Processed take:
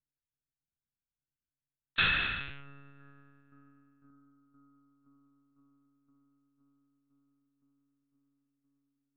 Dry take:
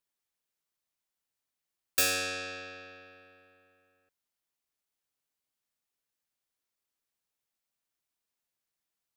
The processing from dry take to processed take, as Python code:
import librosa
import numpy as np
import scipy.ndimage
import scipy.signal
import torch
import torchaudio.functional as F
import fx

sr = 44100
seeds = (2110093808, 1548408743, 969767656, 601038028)

y = fx.wiener(x, sr, points=41)
y = scipy.signal.sosfilt(scipy.signal.ellip(3, 1.0, 40, [260.0, 1200.0], 'bandstop', fs=sr, output='sos'), y)
y = fx.low_shelf_res(y, sr, hz=120.0, db=-8.0, q=3.0)
y = fx.echo_bbd(y, sr, ms=512, stages=4096, feedback_pct=82, wet_db=-16.0)
y = fx.lpc_monotone(y, sr, seeds[0], pitch_hz=140.0, order=10)
y = y * librosa.db_to_amplitude(6.0)